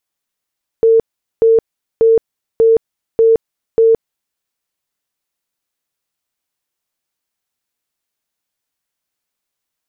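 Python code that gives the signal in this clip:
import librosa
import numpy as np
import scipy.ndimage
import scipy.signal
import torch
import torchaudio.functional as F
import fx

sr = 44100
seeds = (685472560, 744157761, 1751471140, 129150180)

y = fx.tone_burst(sr, hz=452.0, cycles=76, every_s=0.59, bursts=6, level_db=-6.0)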